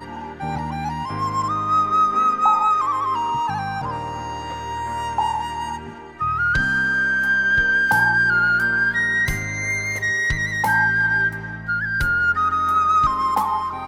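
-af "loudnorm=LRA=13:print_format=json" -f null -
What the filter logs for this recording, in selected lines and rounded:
"input_i" : "-19.5",
"input_tp" : "-6.4",
"input_lra" : "5.3",
"input_thresh" : "-29.6",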